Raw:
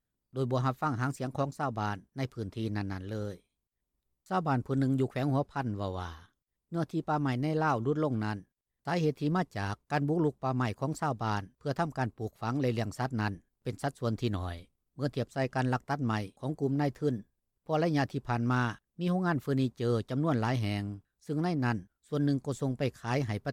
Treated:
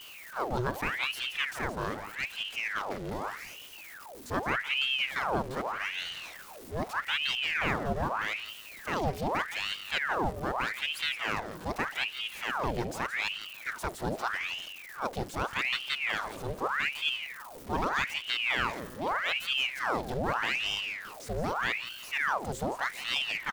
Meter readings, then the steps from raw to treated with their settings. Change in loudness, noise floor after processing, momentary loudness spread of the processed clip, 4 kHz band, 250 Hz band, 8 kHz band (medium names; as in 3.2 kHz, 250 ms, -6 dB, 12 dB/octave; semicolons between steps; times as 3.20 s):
+0.5 dB, -47 dBFS, 9 LU, +14.5 dB, -9.0 dB, +6.0 dB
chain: jump at every zero crossing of -37.5 dBFS; feedback delay 169 ms, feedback 39%, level -11 dB; ring modulator with a swept carrier 1.6 kHz, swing 85%, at 0.82 Hz